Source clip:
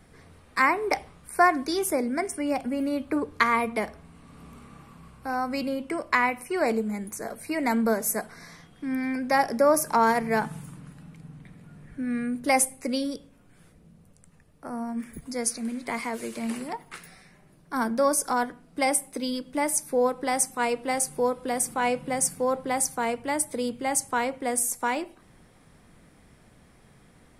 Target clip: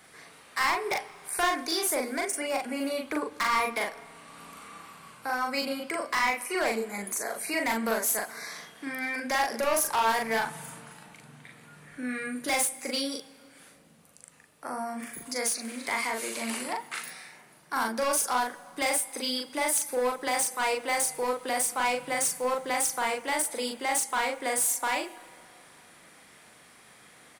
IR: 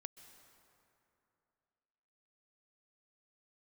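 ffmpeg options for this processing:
-filter_complex "[0:a]highpass=f=1.3k:p=1,bandreject=f=5.3k:w=29,asplit=2[a][b];[b]acompressor=threshold=-41dB:ratio=6,volume=1dB[c];[a][c]amix=inputs=2:normalize=0,asoftclip=type=hard:threshold=-26dB,asplit=2[d][e];[e]adelay=40,volume=-2.5dB[f];[d][f]amix=inputs=2:normalize=0,asplit=2[g][h];[1:a]atrim=start_sample=2205[i];[h][i]afir=irnorm=-1:irlink=0,volume=-2.5dB[j];[g][j]amix=inputs=2:normalize=0,volume=-1.5dB"

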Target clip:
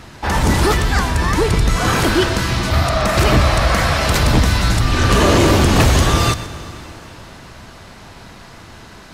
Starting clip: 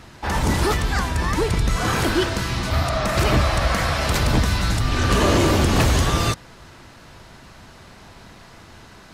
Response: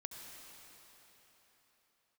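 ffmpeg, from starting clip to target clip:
-filter_complex "[0:a]acontrast=37,asplit=2[a][b];[1:a]atrim=start_sample=2205,adelay=123[c];[b][c]afir=irnorm=-1:irlink=0,volume=-9.5dB[d];[a][d]amix=inputs=2:normalize=0"

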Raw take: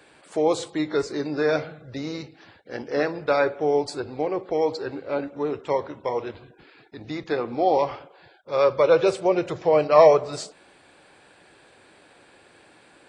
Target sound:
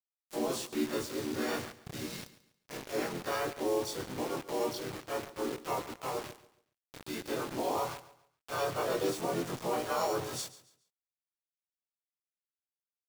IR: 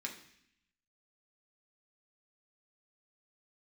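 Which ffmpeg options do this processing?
-filter_complex "[0:a]afftfilt=real='re':imag='-im':win_size=2048:overlap=0.75,adynamicequalizer=threshold=0.00251:dfrequency=2600:dqfactor=2.3:tfrequency=2600:tqfactor=2.3:attack=5:release=100:ratio=0.375:range=3.5:mode=cutabove:tftype=bell,aecho=1:1:0.9:0.42,acrossover=split=150|4100[a][b][c];[b]alimiter=limit=-20.5dB:level=0:latency=1:release=48[d];[c]acontrast=24[e];[a][d][e]amix=inputs=3:normalize=0,asplit=4[f][g][h][i];[g]asetrate=33038,aresample=44100,atempo=1.33484,volume=-9dB[j];[h]asetrate=35002,aresample=44100,atempo=1.25992,volume=-6dB[k];[i]asetrate=55563,aresample=44100,atempo=0.793701,volume=-3dB[l];[f][j][k][l]amix=inputs=4:normalize=0,acrusher=bits=5:mix=0:aa=0.000001,aecho=1:1:140|280|420:0.141|0.0424|0.0127,volume=-6.5dB"

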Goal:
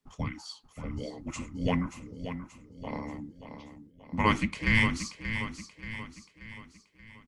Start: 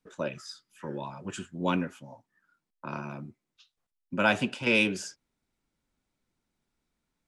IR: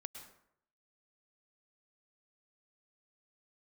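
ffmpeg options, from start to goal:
-af "afreqshift=-440,aecho=1:1:581|1162|1743|2324|2905:0.335|0.161|0.0772|0.037|0.0178"

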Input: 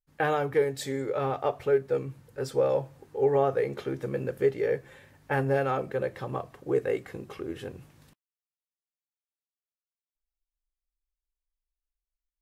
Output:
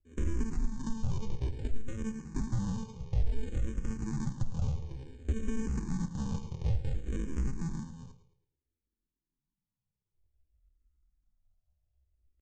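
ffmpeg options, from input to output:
-filter_complex "[0:a]acrossover=split=2900[a][b];[b]acompressor=threshold=-56dB:ratio=4:attack=1:release=60[c];[a][c]amix=inputs=2:normalize=0,aresample=11025,acrusher=samples=27:mix=1:aa=0.000001,aresample=44100,equalizer=f=4.1k:w=2.5:g=13,alimiter=level_in=1dB:limit=-24dB:level=0:latency=1:release=127,volume=-1dB,acompressor=threshold=-40dB:ratio=16,aemphasis=mode=reproduction:type=bsi,asetrate=72056,aresample=44100,atempo=0.612027,aecho=1:1:109|218|327|436:0.237|0.0877|0.0325|0.012,asplit=2[d][e];[e]afreqshift=-0.57[f];[d][f]amix=inputs=2:normalize=1,volume=4dB"

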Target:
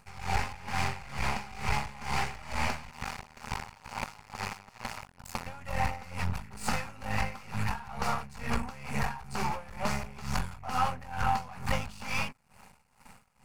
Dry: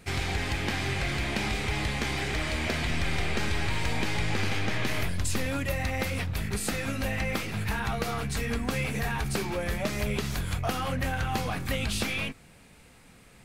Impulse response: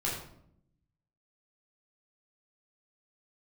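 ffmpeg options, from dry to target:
-filter_complex "[0:a]acrossover=split=9200[a][b];[b]acompressor=threshold=-57dB:ratio=4:attack=1:release=60[c];[a][c]amix=inputs=2:normalize=0,aeval=exprs='max(val(0),0)':c=same,superequalizer=6b=0.282:7b=0.631:9b=2.82:10b=1.78:13b=0.501,asplit=2[d][e];[e]asoftclip=type=tanh:threshold=-24dB,volume=-3dB[f];[d][f]amix=inputs=2:normalize=0,aeval=exprs='val(0)*pow(10,-19*(0.5-0.5*cos(2*PI*2.2*n/s))/20)':c=same"

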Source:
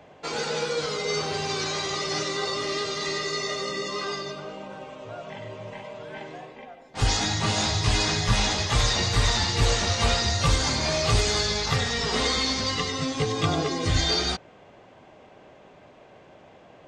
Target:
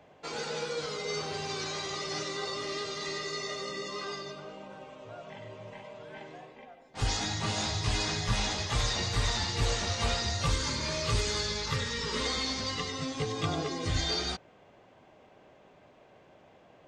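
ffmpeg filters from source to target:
-filter_complex "[0:a]asettb=1/sr,asplit=3[a][b][c];[a]atrim=end=10.504[d];[b]atrim=start=10.5:end=12.26,asetpts=PTS-STARTPTS,afade=t=in:d=0.004:c=qsin,afade=t=out:st=1.756:d=0.004:c=qsin,asuperstop=centerf=720:order=12:qfactor=3.7[e];[c]atrim=start=12.256[f];[d][e]acrossfade=d=0.004:c1=hsin:c2=qsin[g];[g][f]acrossfade=d=0.004:c1=qsin:c2=hsin,volume=-7dB"

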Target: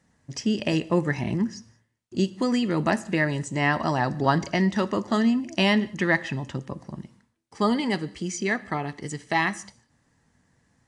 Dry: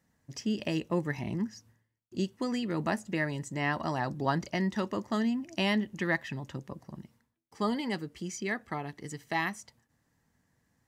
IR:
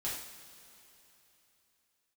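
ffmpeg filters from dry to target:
-filter_complex "[0:a]asplit=2[a][b];[1:a]atrim=start_sample=2205,atrim=end_sample=6174,asetrate=29547,aresample=44100[c];[b][c]afir=irnorm=-1:irlink=0,volume=-21dB[d];[a][d]amix=inputs=2:normalize=0,volume=7dB" -ar 22050 -c:a aac -b:a 64k

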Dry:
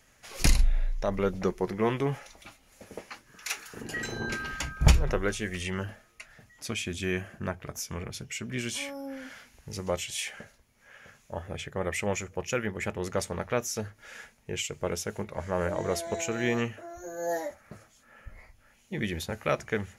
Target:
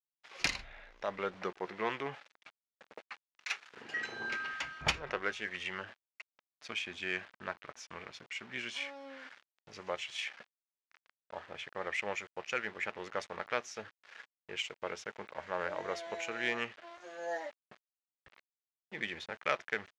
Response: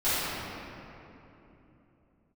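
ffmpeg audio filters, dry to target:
-af "aeval=exprs='val(0)*gte(abs(val(0)),0.0075)':c=same,adynamicsmooth=sensitivity=1:basefreq=2.4k,bandpass=f=3.8k:t=q:w=0.52:csg=0,volume=3.5dB"

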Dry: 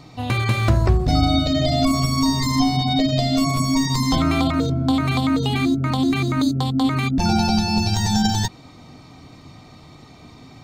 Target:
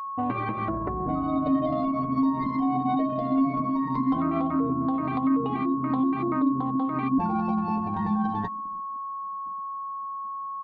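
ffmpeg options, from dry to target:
-filter_complex "[0:a]lowpass=1.6k,asplit=2[a][b];[b]aecho=0:1:315:0.075[c];[a][c]amix=inputs=2:normalize=0,agate=range=-6dB:threshold=-42dB:ratio=16:detection=peak,highpass=f=52:p=1,alimiter=limit=-17dB:level=0:latency=1:release=202,anlmdn=39.8,lowshelf=f=170:t=q:w=3:g=-6.5,acompressor=threshold=-25dB:ratio=2,flanger=delay=6:depth=1:regen=27:speed=1.6:shape=triangular,aeval=exprs='val(0)+0.0158*sin(2*PI*1100*n/s)':c=same,volume=5dB"

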